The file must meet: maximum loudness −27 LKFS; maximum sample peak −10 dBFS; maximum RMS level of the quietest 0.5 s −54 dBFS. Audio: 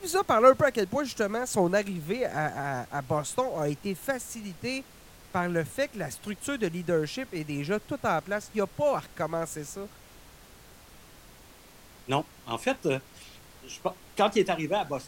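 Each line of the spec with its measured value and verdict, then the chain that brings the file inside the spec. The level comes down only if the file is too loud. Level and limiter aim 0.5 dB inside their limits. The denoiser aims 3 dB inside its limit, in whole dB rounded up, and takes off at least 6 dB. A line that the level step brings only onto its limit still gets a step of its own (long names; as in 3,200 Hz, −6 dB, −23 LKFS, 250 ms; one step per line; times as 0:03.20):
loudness −29.0 LKFS: in spec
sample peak −6.5 dBFS: out of spec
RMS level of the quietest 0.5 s −52 dBFS: out of spec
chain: broadband denoise 6 dB, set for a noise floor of −52 dBFS
brickwall limiter −10.5 dBFS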